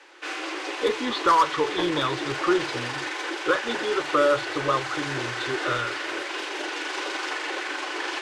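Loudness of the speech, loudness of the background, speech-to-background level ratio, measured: −26.0 LKFS, −30.0 LKFS, 4.0 dB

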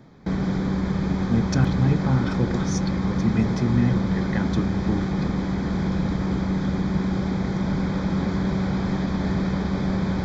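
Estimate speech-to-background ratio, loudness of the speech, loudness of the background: −0.5 dB, −25.5 LKFS, −25.0 LKFS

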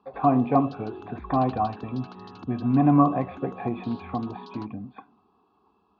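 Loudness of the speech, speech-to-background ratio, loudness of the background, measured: −25.0 LKFS, 18.5 dB, −43.5 LKFS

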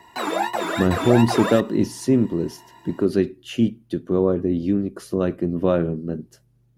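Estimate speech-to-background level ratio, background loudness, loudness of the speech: 3.5 dB, −25.5 LKFS, −22.0 LKFS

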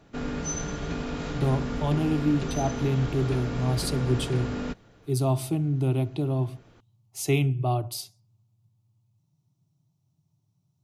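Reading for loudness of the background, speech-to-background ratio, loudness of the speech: −32.5 LKFS, 5.0 dB, −27.5 LKFS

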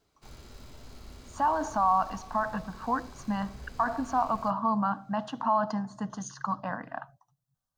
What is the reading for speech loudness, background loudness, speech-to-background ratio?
−30.0 LKFS, −50.0 LKFS, 20.0 dB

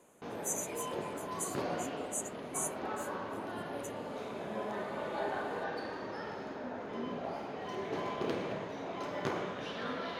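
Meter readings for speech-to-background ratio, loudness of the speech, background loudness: −2.0 dB, −41.5 LKFS, −39.5 LKFS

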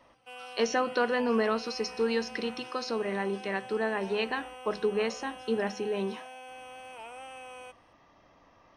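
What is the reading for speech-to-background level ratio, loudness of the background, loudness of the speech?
14.0 dB, −45.0 LKFS, −31.0 LKFS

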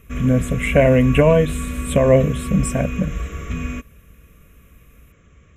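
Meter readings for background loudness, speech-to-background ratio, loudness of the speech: −28.0 LKFS, 10.5 dB, −17.5 LKFS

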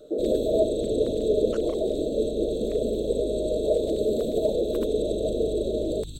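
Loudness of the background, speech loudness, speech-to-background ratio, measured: −39.5 LKFS, −26.0 LKFS, 13.5 dB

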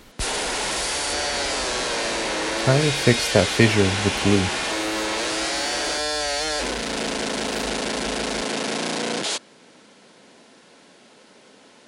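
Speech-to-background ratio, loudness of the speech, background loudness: 3.0 dB, −21.0 LKFS, −24.0 LKFS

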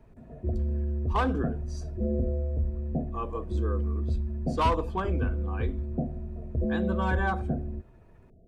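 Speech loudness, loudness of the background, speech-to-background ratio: −32.5 LKFS, −31.5 LKFS, −1.0 dB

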